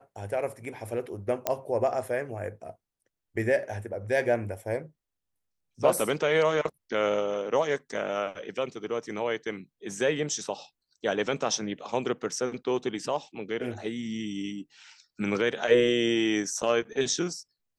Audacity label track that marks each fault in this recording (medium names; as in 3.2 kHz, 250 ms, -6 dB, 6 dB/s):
1.470000	1.470000	pop -10 dBFS